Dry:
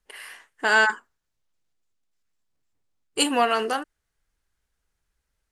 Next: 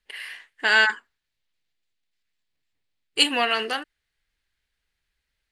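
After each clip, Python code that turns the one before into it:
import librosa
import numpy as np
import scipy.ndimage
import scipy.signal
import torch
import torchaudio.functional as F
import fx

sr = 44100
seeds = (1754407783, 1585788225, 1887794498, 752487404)

y = fx.band_shelf(x, sr, hz=2800.0, db=10.0, octaves=1.7)
y = y * librosa.db_to_amplitude(-4.0)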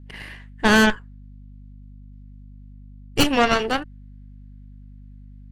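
y = fx.cheby_harmonics(x, sr, harmonics=(8,), levels_db=(-12,), full_scale_db=-2.5)
y = fx.add_hum(y, sr, base_hz=50, snr_db=23)
y = fx.tilt_shelf(y, sr, db=6.5, hz=1300.0)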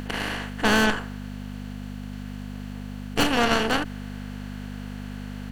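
y = fx.bin_compress(x, sr, power=0.4)
y = y * librosa.db_to_amplitude(-7.0)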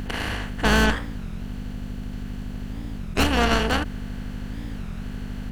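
y = fx.octave_divider(x, sr, octaves=2, level_db=2.0)
y = fx.record_warp(y, sr, rpm=33.33, depth_cents=250.0)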